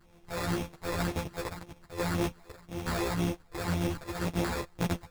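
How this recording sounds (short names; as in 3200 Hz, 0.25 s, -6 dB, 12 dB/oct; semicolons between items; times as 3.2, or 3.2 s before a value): a buzz of ramps at a fixed pitch in blocks of 256 samples; phasing stages 8, 1.9 Hz, lowest notch 210–2100 Hz; aliases and images of a low sample rate 3000 Hz, jitter 0%; a shimmering, thickened sound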